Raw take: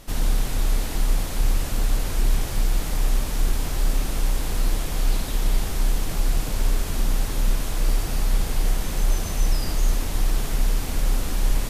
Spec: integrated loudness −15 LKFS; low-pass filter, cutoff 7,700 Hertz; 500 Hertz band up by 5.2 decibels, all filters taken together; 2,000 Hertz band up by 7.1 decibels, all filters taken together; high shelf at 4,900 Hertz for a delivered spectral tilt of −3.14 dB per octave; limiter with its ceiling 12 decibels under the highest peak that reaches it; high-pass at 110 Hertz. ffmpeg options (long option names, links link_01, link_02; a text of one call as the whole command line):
ffmpeg -i in.wav -af "highpass=110,lowpass=7700,equalizer=frequency=500:width_type=o:gain=6,equalizer=frequency=2000:width_type=o:gain=8,highshelf=frequency=4900:gain=3,volume=21.5dB,alimiter=limit=-7dB:level=0:latency=1" out.wav